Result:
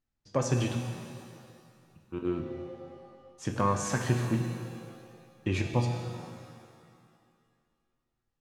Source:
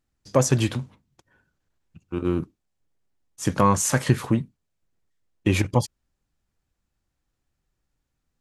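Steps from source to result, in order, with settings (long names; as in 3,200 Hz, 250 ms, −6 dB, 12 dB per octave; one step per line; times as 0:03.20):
low-pass filter 6,100 Hz 12 dB per octave
tuned comb filter 120 Hz, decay 0.78 s, harmonics all, mix 70%
reverb with rising layers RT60 2.1 s, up +7 semitones, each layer −8 dB, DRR 5.5 dB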